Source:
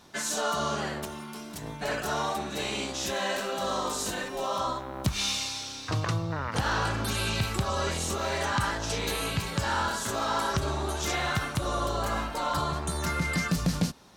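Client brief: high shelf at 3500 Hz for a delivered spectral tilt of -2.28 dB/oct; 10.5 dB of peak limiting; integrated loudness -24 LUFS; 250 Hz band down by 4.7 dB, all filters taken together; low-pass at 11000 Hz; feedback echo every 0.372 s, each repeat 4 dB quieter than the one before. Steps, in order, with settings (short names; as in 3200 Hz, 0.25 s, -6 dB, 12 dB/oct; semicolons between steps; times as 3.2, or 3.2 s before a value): LPF 11000 Hz; bell 250 Hz -7.5 dB; high shelf 3500 Hz +7 dB; limiter -23 dBFS; feedback echo 0.372 s, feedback 63%, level -4 dB; gain +5.5 dB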